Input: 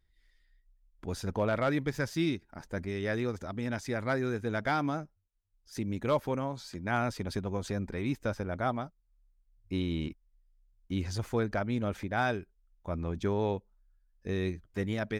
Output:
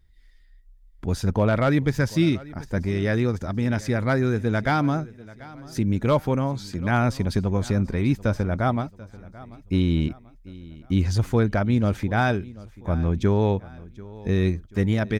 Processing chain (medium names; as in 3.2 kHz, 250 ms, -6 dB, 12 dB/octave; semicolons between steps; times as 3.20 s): tone controls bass +7 dB, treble 0 dB; feedback delay 738 ms, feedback 43%, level -20 dB; trim +6.5 dB